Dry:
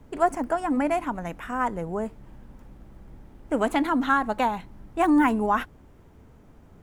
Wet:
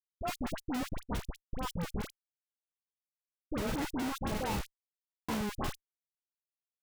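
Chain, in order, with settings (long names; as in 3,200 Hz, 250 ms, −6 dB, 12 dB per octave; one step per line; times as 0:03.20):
peak hold with a decay on every bin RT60 0.69 s
noise reduction from a noise print of the clip's start 21 dB
dynamic equaliser 1,700 Hz, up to −4 dB, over −38 dBFS, Q 2
downward compressor 1.5 to 1, threshold −52 dBFS, peak gain reduction 12.5 dB
gate pattern ".xxxxx.xx" 164 BPM −12 dB
comparator with hysteresis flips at −35 dBFS
all-pass dispersion highs, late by 63 ms, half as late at 1,200 Hz
buffer that repeats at 0:04.96, samples 1,024, times 13
level +5.5 dB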